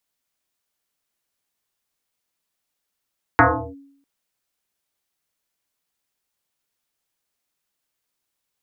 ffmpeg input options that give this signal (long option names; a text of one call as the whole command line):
ffmpeg -f lavfi -i "aevalsrc='0.447*pow(10,-3*t/0.69)*sin(2*PI*278*t+7.9*clip(1-t/0.36,0,1)*sin(2*PI*0.71*278*t))':duration=0.65:sample_rate=44100" out.wav